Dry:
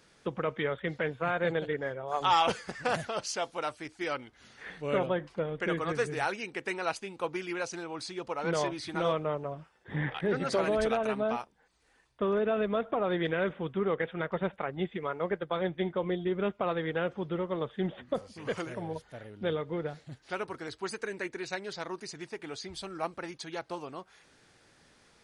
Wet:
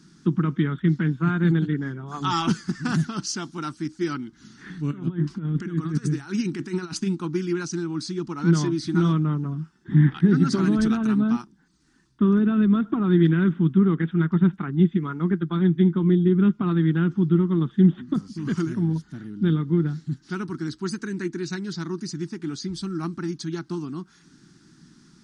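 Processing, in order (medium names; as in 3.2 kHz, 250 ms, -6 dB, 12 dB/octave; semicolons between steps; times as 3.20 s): 4.91–7.15 s: compressor with a negative ratio -39 dBFS, ratio -1; FFT filter 100 Hz 0 dB, 160 Hz +15 dB, 340 Hz +9 dB, 530 Hz -24 dB, 900 Hz -8 dB, 1.4 kHz 0 dB, 2.3 kHz -10 dB, 5.6 kHz +4 dB, 8.2 kHz -1 dB, 12 kHz -8 dB; trim +4.5 dB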